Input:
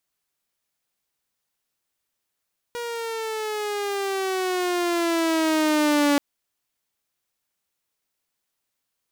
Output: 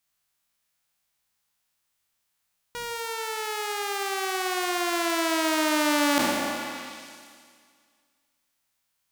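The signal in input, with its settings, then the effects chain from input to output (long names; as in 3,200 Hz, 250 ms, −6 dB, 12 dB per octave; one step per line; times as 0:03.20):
pitch glide with a swell saw, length 3.43 s, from 479 Hz, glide −9 semitones, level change +12 dB, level −14 dB
peak hold with a decay on every bin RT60 2.01 s
parametric band 410 Hz −8 dB 1.3 octaves
echo through a band-pass that steps 151 ms, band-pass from 610 Hz, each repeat 0.7 octaves, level −4 dB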